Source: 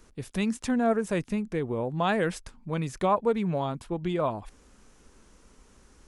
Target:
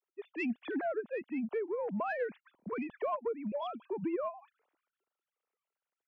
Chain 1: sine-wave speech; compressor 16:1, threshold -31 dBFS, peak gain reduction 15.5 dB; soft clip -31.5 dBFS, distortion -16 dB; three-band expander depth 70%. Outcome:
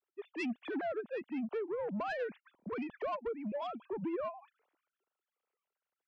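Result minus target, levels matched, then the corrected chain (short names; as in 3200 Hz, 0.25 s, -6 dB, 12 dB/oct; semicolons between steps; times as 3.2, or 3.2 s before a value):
soft clip: distortion +12 dB
sine-wave speech; compressor 16:1, threshold -31 dBFS, peak gain reduction 15.5 dB; soft clip -24 dBFS, distortion -28 dB; three-band expander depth 70%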